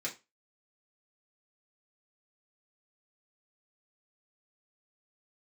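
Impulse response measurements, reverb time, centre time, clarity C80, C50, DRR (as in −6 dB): 0.25 s, 14 ms, 20.5 dB, 13.5 dB, −4.5 dB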